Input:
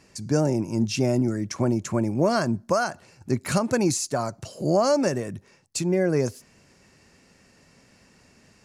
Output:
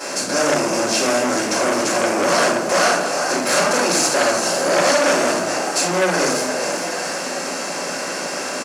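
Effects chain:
compressor on every frequency bin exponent 0.4
high-pass filter 270 Hz 12 dB per octave
tilt shelving filter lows −6 dB, about 640 Hz
on a send: echo with shifted repeats 427 ms, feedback 56%, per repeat +69 Hz, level −9 dB
on the sum: rectangular room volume 110 cubic metres, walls mixed, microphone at 4.8 metres
saturating transformer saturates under 2,500 Hz
level −11.5 dB

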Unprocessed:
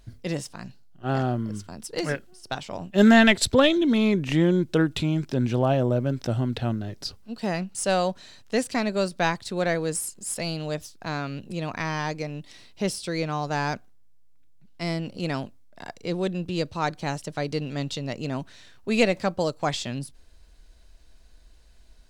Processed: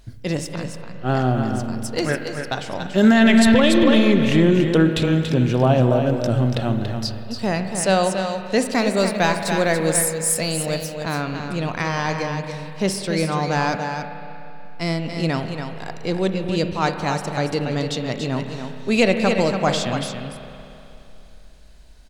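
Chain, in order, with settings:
0:08.73–0:10.94: high-shelf EQ 10,000 Hz +11.5 dB
single-tap delay 284 ms −7 dB
spring reverb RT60 3 s, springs 31/47 ms, chirp 35 ms, DRR 7.5 dB
boost into a limiter +9.5 dB
level −4.5 dB

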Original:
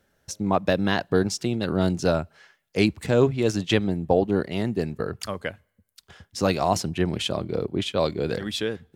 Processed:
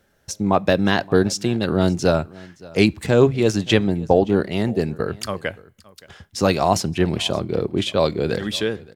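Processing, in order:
single-tap delay 571 ms −22.5 dB
on a send at −16.5 dB: convolution reverb RT60 0.30 s, pre-delay 3 ms
on the sum: level +4.5 dB

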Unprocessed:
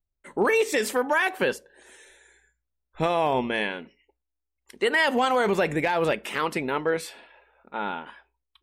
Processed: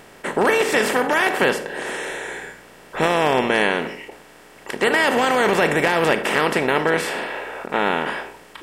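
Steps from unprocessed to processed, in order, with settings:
compressor on every frequency bin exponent 0.4
every ending faded ahead of time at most 200 dB per second

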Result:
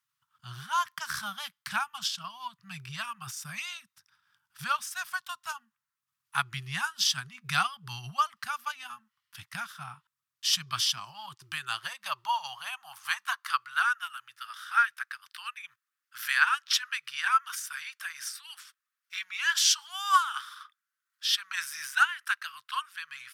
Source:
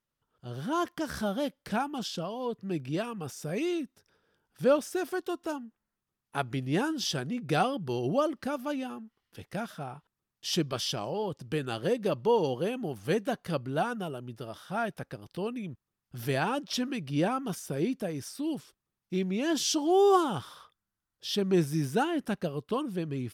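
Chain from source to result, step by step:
elliptic band-stop filter 120–1,100 Hz, stop band 60 dB
transient designer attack +3 dB, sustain −5 dB
high-pass filter sweep 230 Hz → 1,500 Hz, 0:10.79–0:13.90
level +5.5 dB

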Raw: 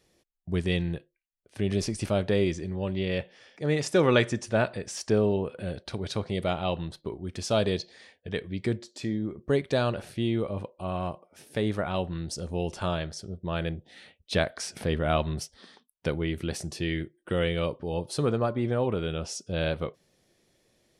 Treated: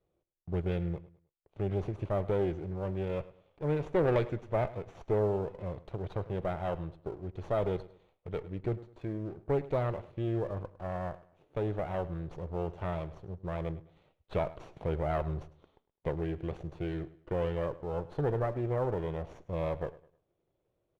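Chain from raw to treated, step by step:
lower of the sound and its delayed copy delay 0.3 ms
low-pass filter 1,300 Hz 12 dB per octave
parametric band 230 Hz −12 dB 0.49 octaves
leveller curve on the samples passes 1
on a send: repeating echo 104 ms, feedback 32%, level −18 dB
on the sum: level −5.5 dB

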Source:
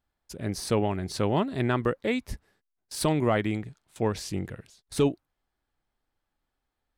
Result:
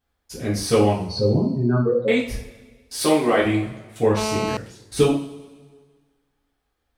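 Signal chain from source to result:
0:00.92–0:02.08: expanding power law on the bin magnitudes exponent 2.9
0:03.02–0:03.42: high-pass filter 270 Hz 12 dB per octave
coupled-rooms reverb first 0.45 s, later 1.6 s, from −17 dB, DRR −7 dB
0:04.17–0:04.57: phone interference −25 dBFS

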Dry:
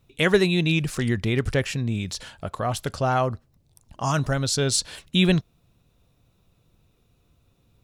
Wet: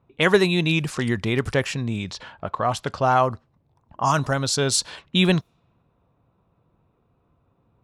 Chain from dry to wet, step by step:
low-pass that shuts in the quiet parts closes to 1,400 Hz, open at −19.5 dBFS
high-pass filter 120 Hz 6 dB per octave
parametric band 990 Hz +6.5 dB 0.74 octaves
level +1.5 dB

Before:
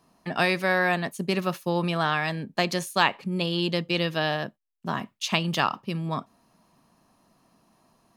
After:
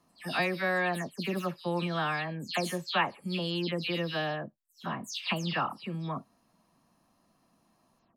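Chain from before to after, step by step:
every frequency bin delayed by itself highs early, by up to 176 ms
level −5.5 dB

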